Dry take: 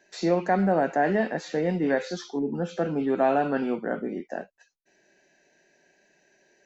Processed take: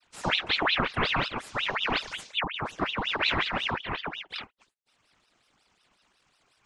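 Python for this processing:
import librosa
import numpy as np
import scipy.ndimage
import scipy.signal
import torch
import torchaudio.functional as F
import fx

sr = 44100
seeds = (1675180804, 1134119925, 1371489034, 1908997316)

y = fx.spec_quant(x, sr, step_db=30)
y = fx.noise_vocoder(y, sr, seeds[0], bands=16)
y = fx.ring_lfo(y, sr, carrier_hz=1900.0, swing_pct=75, hz=5.5)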